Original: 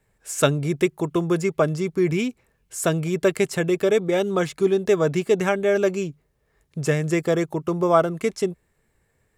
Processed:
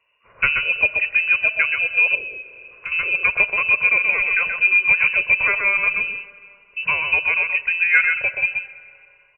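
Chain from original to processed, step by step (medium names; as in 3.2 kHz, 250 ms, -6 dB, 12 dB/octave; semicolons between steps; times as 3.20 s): frequency inversion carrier 2.8 kHz; bass shelf 140 Hz -4 dB; comb 2 ms, depth 53%; delay 129 ms -5.5 dB; reverberation RT60 2.8 s, pre-delay 5 ms, DRR 15.5 dB; 2.15–2.92 s: compression 4:1, threshold -30 dBFS, peak gain reduction 12.5 dB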